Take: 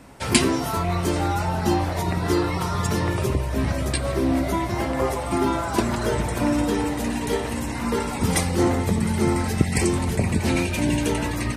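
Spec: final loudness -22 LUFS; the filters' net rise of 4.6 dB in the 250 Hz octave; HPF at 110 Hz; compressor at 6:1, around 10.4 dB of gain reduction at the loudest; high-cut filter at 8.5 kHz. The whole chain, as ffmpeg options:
-af "highpass=110,lowpass=8500,equalizer=f=250:t=o:g=6,acompressor=threshold=0.1:ratio=6,volume=1.41"

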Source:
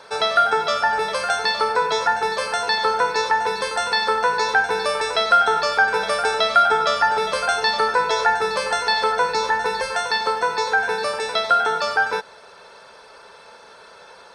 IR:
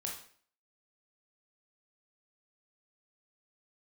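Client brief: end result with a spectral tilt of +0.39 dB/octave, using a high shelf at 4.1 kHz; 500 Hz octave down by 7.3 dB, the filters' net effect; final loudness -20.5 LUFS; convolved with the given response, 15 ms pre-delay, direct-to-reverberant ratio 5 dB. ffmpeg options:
-filter_complex "[0:a]equalizer=f=500:t=o:g=-9,highshelf=f=4100:g=6.5,asplit=2[s0][s1];[1:a]atrim=start_sample=2205,adelay=15[s2];[s1][s2]afir=irnorm=-1:irlink=0,volume=0.562[s3];[s0][s3]amix=inputs=2:normalize=0,volume=0.794"

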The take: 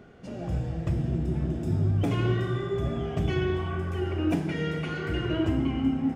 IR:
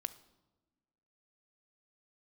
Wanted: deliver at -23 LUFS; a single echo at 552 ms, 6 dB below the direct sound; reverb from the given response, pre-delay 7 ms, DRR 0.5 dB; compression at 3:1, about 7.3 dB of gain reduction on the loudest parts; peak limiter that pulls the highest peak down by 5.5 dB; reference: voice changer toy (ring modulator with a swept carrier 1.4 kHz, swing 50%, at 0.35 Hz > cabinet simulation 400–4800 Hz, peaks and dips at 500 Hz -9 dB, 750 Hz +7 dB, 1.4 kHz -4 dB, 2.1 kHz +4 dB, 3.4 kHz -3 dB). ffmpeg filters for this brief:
-filter_complex "[0:a]acompressor=threshold=0.0282:ratio=3,alimiter=level_in=1.5:limit=0.0631:level=0:latency=1,volume=0.668,aecho=1:1:552:0.501,asplit=2[s0][s1];[1:a]atrim=start_sample=2205,adelay=7[s2];[s1][s2]afir=irnorm=-1:irlink=0,volume=1.12[s3];[s0][s3]amix=inputs=2:normalize=0,aeval=exprs='val(0)*sin(2*PI*1400*n/s+1400*0.5/0.35*sin(2*PI*0.35*n/s))':c=same,highpass=400,equalizer=f=500:t=q:w=4:g=-9,equalizer=f=750:t=q:w=4:g=7,equalizer=f=1400:t=q:w=4:g=-4,equalizer=f=2100:t=q:w=4:g=4,equalizer=f=3400:t=q:w=4:g=-3,lowpass=f=4800:w=0.5412,lowpass=f=4800:w=1.3066,volume=2.99"

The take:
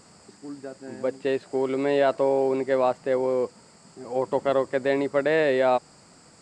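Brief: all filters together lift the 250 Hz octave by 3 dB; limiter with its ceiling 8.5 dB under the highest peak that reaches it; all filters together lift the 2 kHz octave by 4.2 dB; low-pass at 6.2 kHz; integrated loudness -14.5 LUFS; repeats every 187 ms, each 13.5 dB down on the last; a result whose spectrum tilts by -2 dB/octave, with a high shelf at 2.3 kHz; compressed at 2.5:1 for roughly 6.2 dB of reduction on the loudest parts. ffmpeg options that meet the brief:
-af "lowpass=6200,equalizer=f=250:t=o:g=3.5,equalizer=f=2000:t=o:g=6.5,highshelf=f=2300:g=-3.5,acompressor=threshold=0.0562:ratio=2.5,alimiter=limit=0.0794:level=0:latency=1,aecho=1:1:187|374:0.211|0.0444,volume=7.94"

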